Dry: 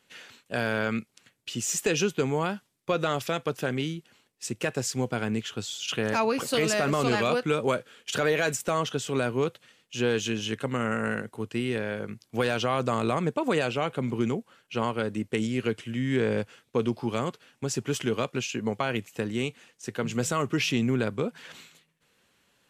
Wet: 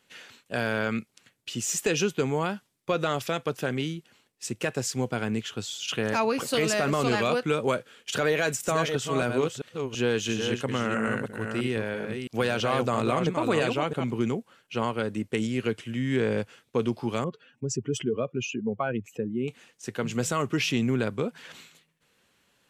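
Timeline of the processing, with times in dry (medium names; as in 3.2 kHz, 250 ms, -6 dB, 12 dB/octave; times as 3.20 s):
8.29–14.04 s: chunks repeated in reverse 332 ms, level -5.5 dB
17.24–19.48 s: spectral contrast enhancement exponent 2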